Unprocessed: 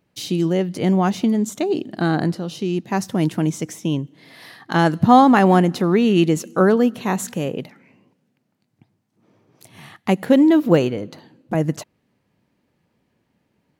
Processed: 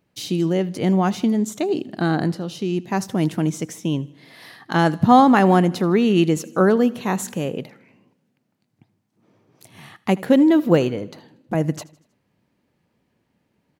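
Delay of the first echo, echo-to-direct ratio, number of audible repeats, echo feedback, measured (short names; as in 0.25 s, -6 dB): 79 ms, -20.5 dB, 3, 51%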